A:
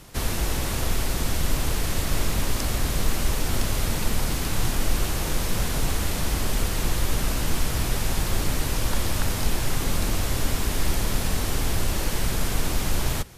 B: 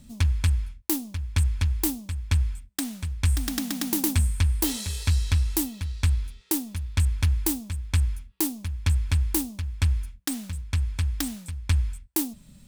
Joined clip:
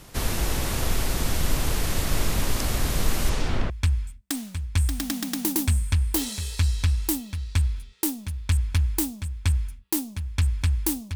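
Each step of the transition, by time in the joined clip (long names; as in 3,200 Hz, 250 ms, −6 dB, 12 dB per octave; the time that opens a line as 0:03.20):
A
0:03.29–0:03.70: low-pass filter 8,900 Hz → 1,800 Hz
0:03.70: continue with B from 0:02.18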